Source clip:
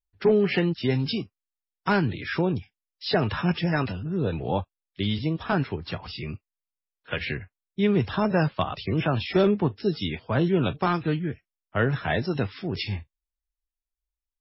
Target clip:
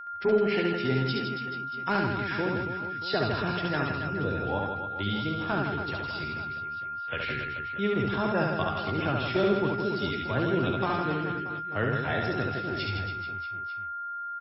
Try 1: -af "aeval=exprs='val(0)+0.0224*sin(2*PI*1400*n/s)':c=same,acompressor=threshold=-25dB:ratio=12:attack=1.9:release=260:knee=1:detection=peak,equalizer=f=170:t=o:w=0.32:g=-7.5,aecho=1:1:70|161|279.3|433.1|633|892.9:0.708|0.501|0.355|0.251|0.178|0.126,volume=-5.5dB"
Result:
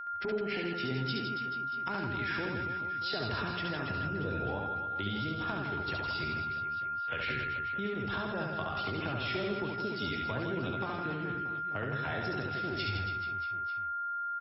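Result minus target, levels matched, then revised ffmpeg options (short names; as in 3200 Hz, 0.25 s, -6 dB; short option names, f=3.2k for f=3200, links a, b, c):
compressor: peak gain reduction +11.5 dB
-af "aeval=exprs='val(0)+0.0224*sin(2*PI*1400*n/s)':c=same,equalizer=f=170:t=o:w=0.32:g=-7.5,aecho=1:1:70|161|279.3|433.1|633|892.9:0.708|0.501|0.355|0.251|0.178|0.126,volume=-5.5dB"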